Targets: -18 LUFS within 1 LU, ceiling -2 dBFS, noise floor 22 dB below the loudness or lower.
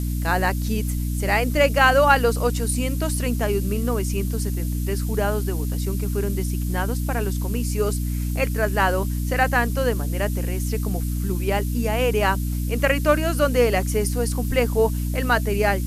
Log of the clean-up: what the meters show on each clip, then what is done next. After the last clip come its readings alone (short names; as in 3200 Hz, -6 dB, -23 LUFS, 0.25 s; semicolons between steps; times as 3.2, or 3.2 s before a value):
hum 60 Hz; harmonics up to 300 Hz; hum level -22 dBFS; noise floor -25 dBFS; noise floor target -45 dBFS; loudness -22.5 LUFS; peak -3.0 dBFS; loudness target -18.0 LUFS
-> de-hum 60 Hz, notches 5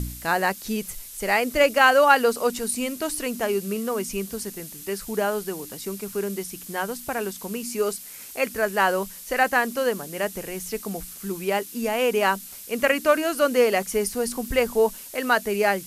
hum none; noise floor -41 dBFS; noise floor target -46 dBFS
-> noise print and reduce 6 dB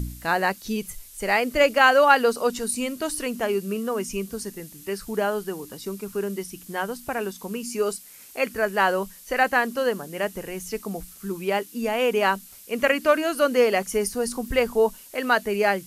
noise floor -47 dBFS; loudness -24.0 LUFS; peak -3.5 dBFS; loudness target -18.0 LUFS
-> gain +6 dB; limiter -2 dBFS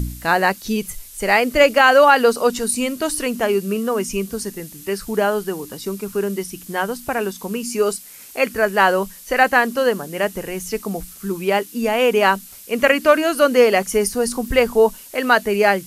loudness -18.5 LUFS; peak -2.0 dBFS; noise floor -41 dBFS